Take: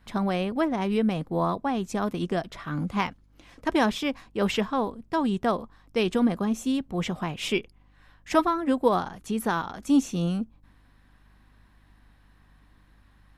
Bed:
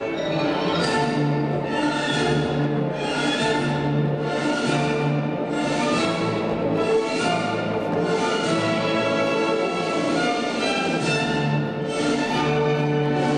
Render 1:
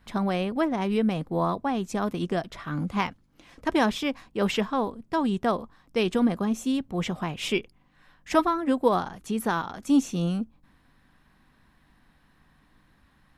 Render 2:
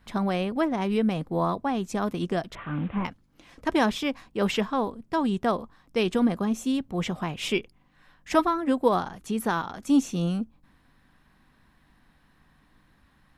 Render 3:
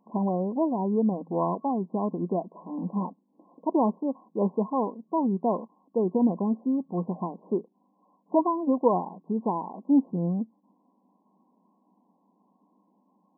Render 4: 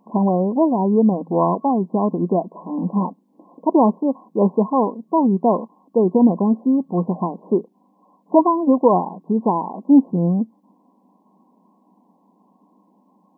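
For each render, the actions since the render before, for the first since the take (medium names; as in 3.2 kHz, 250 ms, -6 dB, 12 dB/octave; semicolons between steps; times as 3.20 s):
de-hum 50 Hz, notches 2
2.55–3.05 s: one-bit delta coder 16 kbps, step -40 dBFS
FFT band-pass 170–1100 Hz
trim +9 dB; peak limiter -3 dBFS, peak gain reduction 2.5 dB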